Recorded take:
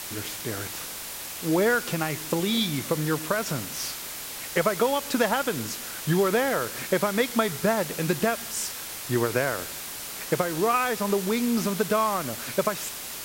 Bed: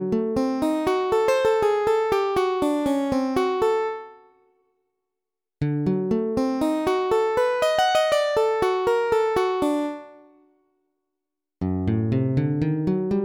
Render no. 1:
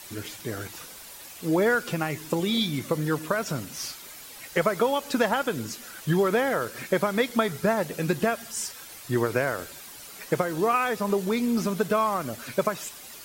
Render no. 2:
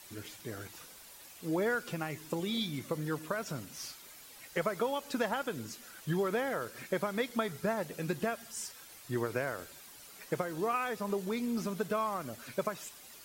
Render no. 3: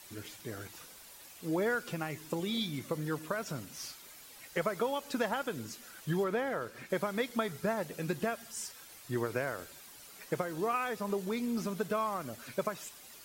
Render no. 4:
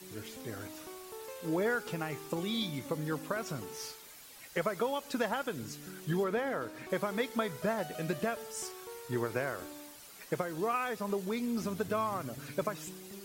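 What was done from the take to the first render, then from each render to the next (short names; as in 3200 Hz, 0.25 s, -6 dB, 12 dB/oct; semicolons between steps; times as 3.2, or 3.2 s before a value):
denoiser 10 dB, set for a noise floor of -37 dBFS
gain -9 dB
6.24–6.9 high shelf 4500 Hz -8 dB
add bed -26 dB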